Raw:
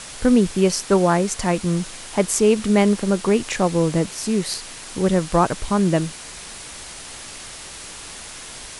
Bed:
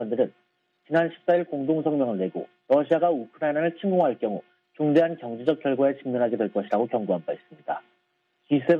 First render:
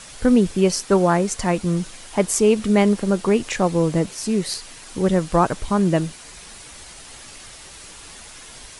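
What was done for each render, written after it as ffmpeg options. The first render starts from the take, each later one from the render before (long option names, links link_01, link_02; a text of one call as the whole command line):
ffmpeg -i in.wav -af "afftdn=noise_reduction=6:noise_floor=-37" out.wav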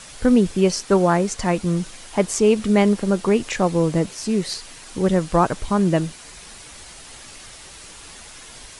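ffmpeg -i in.wav -filter_complex "[0:a]acrossover=split=8600[link_01][link_02];[link_02]acompressor=threshold=-45dB:ratio=4:attack=1:release=60[link_03];[link_01][link_03]amix=inputs=2:normalize=0" out.wav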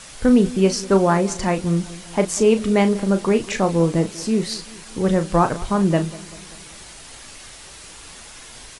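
ffmpeg -i in.wav -filter_complex "[0:a]asplit=2[link_01][link_02];[link_02]adelay=36,volume=-9.5dB[link_03];[link_01][link_03]amix=inputs=2:normalize=0,asplit=2[link_04][link_05];[link_05]adelay=194,lowpass=frequency=2000:poles=1,volume=-19dB,asplit=2[link_06][link_07];[link_07]adelay=194,lowpass=frequency=2000:poles=1,volume=0.55,asplit=2[link_08][link_09];[link_09]adelay=194,lowpass=frequency=2000:poles=1,volume=0.55,asplit=2[link_10][link_11];[link_11]adelay=194,lowpass=frequency=2000:poles=1,volume=0.55,asplit=2[link_12][link_13];[link_13]adelay=194,lowpass=frequency=2000:poles=1,volume=0.55[link_14];[link_04][link_06][link_08][link_10][link_12][link_14]amix=inputs=6:normalize=0" out.wav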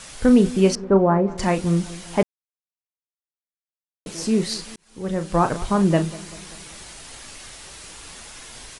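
ffmpeg -i in.wav -filter_complex "[0:a]asettb=1/sr,asplit=3[link_01][link_02][link_03];[link_01]atrim=end=0.754[link_04];[link_02]atrim=start=0.75:end=1.38,asetpts=PTS-STARTPTS,afade=type=in:duration=0.004:curve=qsin,afade=type=out:start_time=0.626:duration=0.004:curve=qsin,lowpass=1100[link_05];[link_03]atrim=start=1.376[link_06];[link_04][link_05]acrossfade=duration=0.004:curve1=hsin:curve2=qsin[link_07];[link_07][link_06]acrossfade=duration=0.004:curve1=qsin:curve2=hsin,asplit=4[link_08][link_09][link_10][link_11];[link_08]atrim=end=2.23,asetpts=PTS-STARTPTS,afade=type=out:start_time=2.226:duration=0.004:curve=hsin[link_12];[link_09]atrim=start=2.23:end=4.06,asetpts=PTS-STARTPTS,volume=0[link_13];[link_10]atrim=start=4.06:end=4.76,asetpts=PTS-STARTPTS,afade=type=in:duration=0.004:curve=hsin,afade=type=out:start_time=0.696:duration=0.004:curve=hsin[link_14];[link_11]atrim=start=4.76,asetpts=PTS-STARTPTS,afade=type=in:duration=0.82[link_15];[link_12][link_13][link_14][link_15]concat=n=4:v=0:a=1" out.wav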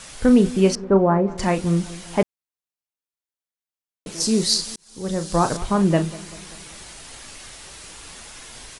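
ffmpeg -i in.wav -filter_complex "[0:a]asettb=1/sr,asplit=3[link_01][link_02][link_03];[link_01]atrim=end=4.204[link_04];[link_02]atrim=start=4.2:end=5.57,asetpts=PTS-STARTPTS,afade=type=in:duration=0.004:curve=qsin,afade=type=out:start_time=1.366:duration=0.004:curve=qsin,highshelf=frequency=3400:width_type=q:width=1.5:gain=8[link_05];[link_03]atrim=start=5.566[link_06];[link_04][link_05]acrossfade=duration=0.004:curve1=hsin:curve2=qsin[link_07];[link_07][link_06]acrossfade=duration=0.004:curve1=qsin:curve2=hsin" out.wav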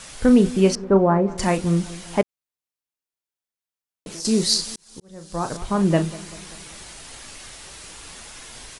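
ffmpeg -i in.wav -filter_complex "[0:a]asettb=1/sr,asplit=3[link_01][link_02][link_03];[link_01]atrim=end=0.804[link_04];[link_02]atrim=start=0.8:end=1.57,asetpts=PTS-STARTPTS,afade=type=in:duration=0.004:curve=qsin,afade=type=out:start_time=0.766:duration=0.004:curve=qsin,highshelf=frequency=8400:gain=9.5[link_05];[link_03]atrim=start=1.566[link_06];[link_04][link_05]acrossfade=duration=0.004:curve1=hsin:curve2=qsin[link_07];[link_07][link_06]acrossfade=duration=0.004:curve1=qsin:curve2=hsin,asettb=1/sr,asplit=3[link_08][link_09][link_10];[link_08]atrim=end=2.214[link_11];[link_09]atrim=start=2.21:end=4.25,asetpts=PTS-STARTPTS,afade=type=in:duration=0.004:curve=qsin,afade=type=out:start_time=2.036:duration=0.004:curve=qsin,acompressor=threshold=-31dB:ratio=5:attack=3.2:release=140:knee=1:detection=peak[link_12];[link_10]atrim=start=4.246[link_13];[link_11][link_12]acrossfade=duration=0.004:curve1=hsin:curve2=qsin[link_14];[link_14][link_13]acrossfade=duration=0.004:curve1=qsin:curve2=hsin,asplit=2[link_15][link_16];[link_15]atrim=end=5,asetpts=PTS-STARTPTS,afade=type=out:start_time=4.996:duration=0.004:curve=hsin[link_17];[link_16]atrim=start=5,asetpts=PTS-STARTPTS,afade=type=in:duration=0.95[link_18];[link_17][link_18]concat=n=2:v=0:a=1" out.wav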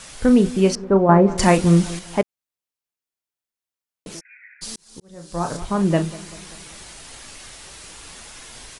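ffmpeg -i in.wav -filter_complex "[0:a]asplit=3[link_01][link_02][link_03];[link_01]afade=type=out:start_time=4.19:duration=0.02[link_04];[link_02]asuperpass=centerf=1900:order=20:qfactor=1.8,afade=type=in:start_time=4.19:duration=0.02,afade=type=out:start_time=4.61:duration=0.02[link_05];[link_03]afade=type=in:start_time=4.61:duration=0.02[link_06];[link_04][link_05][link_06]amix=inputs=3:normalize=0,asettb=1/sr,asplit=3[link_07][link_08][link_09];[link_07]atrim=end=5.114[link_10];[link_08]atrim=start=5.11:end=5.65,asetpts=PTS-STARTPTS,afade=type=in:duration=0.004:curve=qsin,afade=type=out:start_time=0.536:duration=0.004:curve=qsin,asplit=2[link_11][link_12];[link_12]adelay=29,volume=-6dB[link_13];[link_11][link_13]amix=inputs=2:normalize=0,atrim=end_sample=23814[link_14];[link_09]atrim=start=5.646[link_15];[link_10][link_14]acrossfade=duration=0.004:curve1=hsin:curve2=qsin[link_16];[link_16][link_15]acrossfade=duration=0.004:curve1=qsin:curve2=hsin,asplit=3[link_17][link_18][link_19];[link_17]atrim=end=1.092[link_20];[link_18]atrim=start=1.088:end=1.992,asetpts=PTS-STARTPTS,volume=6dB[link_21];[link_19]atrim=start=1.988[link_22];[link_20][link_21]acrossfade=duration=0.004:curve1=hsin:curve2=hsin[link_23];[link_23][link_22]acrossfade=duration=0.004:curve1=hsin:curve2=hsin" out.wav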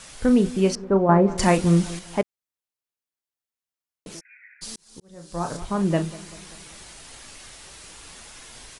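ffmpeg -i in.wav -af "volume=-3.5dB" out.wav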